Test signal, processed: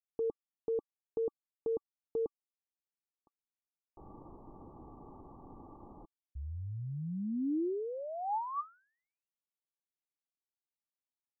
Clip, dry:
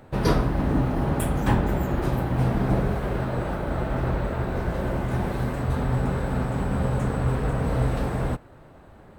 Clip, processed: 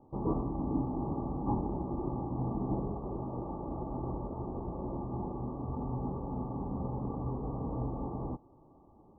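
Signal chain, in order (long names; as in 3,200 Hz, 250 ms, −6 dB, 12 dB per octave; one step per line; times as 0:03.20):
Chebyshev low-pass with heavy ripple 1,200 Hz, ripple 9 dB
level −5.5 dB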